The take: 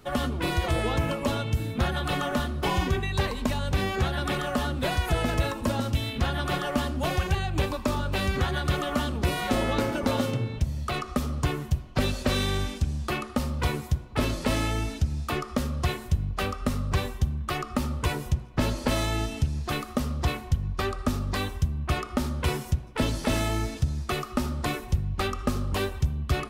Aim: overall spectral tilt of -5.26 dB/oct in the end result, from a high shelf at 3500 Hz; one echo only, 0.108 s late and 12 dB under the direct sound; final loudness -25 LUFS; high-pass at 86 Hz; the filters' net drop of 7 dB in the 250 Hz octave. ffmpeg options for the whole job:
-af "highpass=86,equalizer=f=250:t=o:g=-9,highshelf=f=3.5k:g=-5.5,aecho=1:1:108:0.251,volume=6.5dB"

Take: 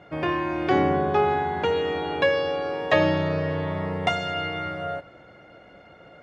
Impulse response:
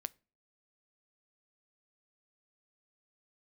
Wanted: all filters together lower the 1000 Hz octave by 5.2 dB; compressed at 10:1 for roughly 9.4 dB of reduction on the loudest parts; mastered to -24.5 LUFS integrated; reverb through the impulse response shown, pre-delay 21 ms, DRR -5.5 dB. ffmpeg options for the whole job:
-filter_complex "[0:a]equalizer=f=1k:t=o:g=-7.5,acompressor=threshold=-27dB:ratio=10,asplit=2[a][b];[1:a]atrim=start_sample=2205,adelay=21[c];[b][c]afir=irnorm=-1:irlink=0,volume=8dB[d];[a][d]amix=inputs=2:normalize=0,volume=1dB"

